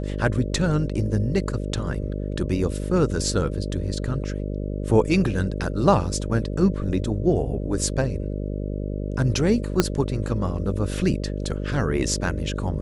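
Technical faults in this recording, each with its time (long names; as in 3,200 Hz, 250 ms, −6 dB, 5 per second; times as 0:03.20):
mains buzz 50 Hz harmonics 12 −28 dBFS
0:09.80: click −3 dBFS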